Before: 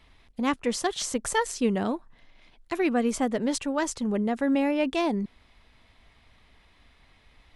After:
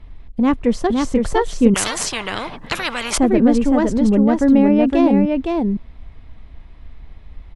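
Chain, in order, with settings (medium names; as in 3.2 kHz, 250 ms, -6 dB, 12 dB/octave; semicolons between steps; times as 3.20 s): tilt EQ -3.5 dB/octave; delay 513 ms -3.5 dB; 1.74–3.18 s: spectrum-flattening compressor 10:1; trim +5 dB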